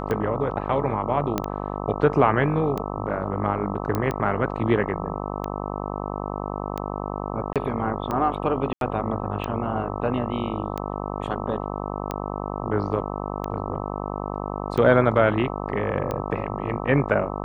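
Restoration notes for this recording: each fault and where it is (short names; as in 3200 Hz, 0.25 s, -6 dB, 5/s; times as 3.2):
buzz 50 Hz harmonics 26 -30 dBFS
tick 45 rpm -15 dBFS
1.38 pop -9 dBFS
3.95 pop -12 dBFS
7.53–7.56 gap 27 ms
8.73–8.81 gap 82 ms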